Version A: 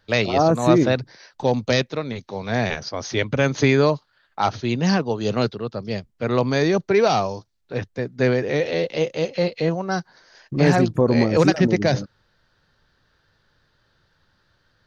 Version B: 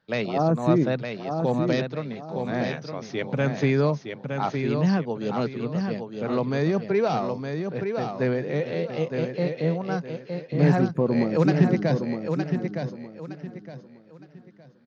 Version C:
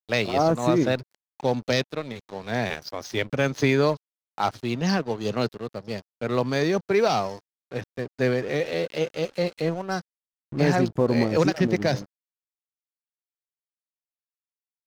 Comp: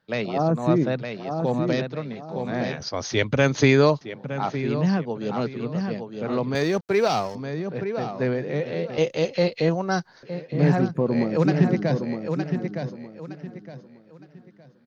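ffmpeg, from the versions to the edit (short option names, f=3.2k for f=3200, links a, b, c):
-filter_complex "[0:a]asplit=2[a][b];[1:a]asplit=4[c][d][e][f];[c]atrim=end=2.802[g];[a]atrim=start=2.798:end=4.012[h];[d]atrim=start=4.008:end=6.552[i];[2:a]atrim=start=6.548:end=7.352[j];[e]atrim=start=7.348:end=8.982[k];[b]atrim=start=8.978:end=10.232[l];[f]atrim=start=10.228[m];[g][h]acrossfade=d=0.004:c1=hsin:c2=hsin[n];[n][i]acrossfade=d=0.004:c1=hsin:c2=hsin[o];[o][j]acrossfade=d=0.004:c1=hsin:c2=hsin[p];[p][k]acrossfade=d=0.004:c1=hsin:c2=hsin[q];[q][l]acrossfade=d=0.004:c1=hsin:c2=hsin[r];[r][m]acrossfade=d=0.004:c1=hsin:c2=hsin"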